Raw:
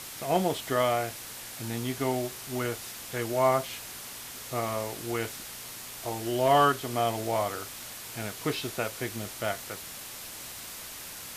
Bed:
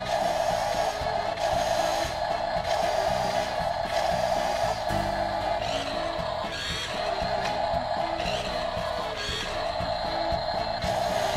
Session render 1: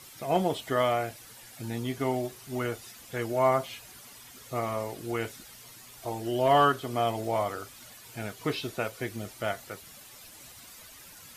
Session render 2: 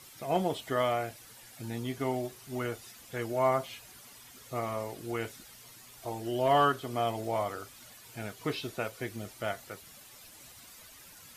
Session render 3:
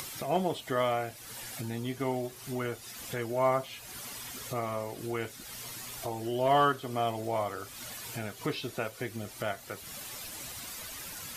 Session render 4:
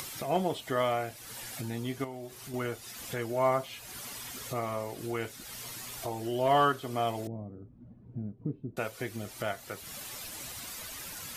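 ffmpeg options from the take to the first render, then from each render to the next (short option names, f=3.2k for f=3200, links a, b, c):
-af "afftdn=nr=11:nf=-42"
-af "volume=-3dB"
-af "acompressor=mode=upward:threshold=-31dB:ratio=2.5"
-filter_complex "[0:a]asettb=1/sr,asplit=3[a][b][c];[a]atrim=end=2.044[d];[b]atrim=start=2.04:end=2.54,asetpts=PTS-STARTPTS,afade=t=in:d=0.004:c=qsin,afade=t=out:st=0.496:d=0.004:c=qsin,acompressor=threshold=-41dB:ratio=2.5:attack=3.2:release=140:knee=1:detection=peak[e];[c]atrim=start=2.536[f];[d][e]acrossfade=d=0.004:c1=hsin:c2=qsin[g];[g][f]acrossfade=d=0.004:c1=qsin:c2=hsin,asettb=1/sr,asplit=3[h][i][j];[h]atrim=end=7.274[k];[i]atrim=start=7.27:end=8.77,asetpts=PTS-STARTPTS,afade=t=in:d=0.004:c=qsin,afade=t=out:st=1.496:d=0.004:c=qsin,lowpass=f=220:t=q:w=1.6[l];[j]atrim=start=8.766[m];[k][l]acrossfade=d=0.004:c1=hsin:c2=qsin[n];[n][m]acrossfade=d=0.004:c1=qsin:c2=hsin"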